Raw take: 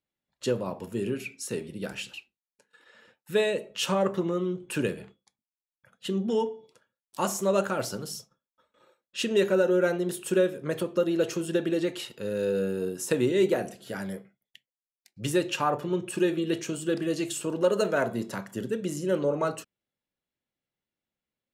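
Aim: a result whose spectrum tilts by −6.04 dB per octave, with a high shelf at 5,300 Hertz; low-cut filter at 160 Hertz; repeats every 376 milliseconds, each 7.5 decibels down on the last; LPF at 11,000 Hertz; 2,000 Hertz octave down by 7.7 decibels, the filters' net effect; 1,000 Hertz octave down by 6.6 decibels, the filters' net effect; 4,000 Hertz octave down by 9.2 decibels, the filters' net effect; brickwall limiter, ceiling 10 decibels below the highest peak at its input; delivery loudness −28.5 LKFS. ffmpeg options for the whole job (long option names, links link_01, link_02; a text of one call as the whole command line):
ffmpeg -i in.wav -af "highpass=160,lowpass=11000,equalizer=frequency=1000:width_type=o:gain=-7,equalizer=frequency=2000:width_type=o:gain=-5,equalizer=frequency=4000:width_type=o:gain=-7.5,highshelf=frequency=5300:gain=-6.5,alimiter=limit=-23.5dB:level=0:latency=1,aecho=1:1:376|752|1128|1504|1880:0.422|0.177|0.0744|0.0312|0.0131,volume=5dB" out.wav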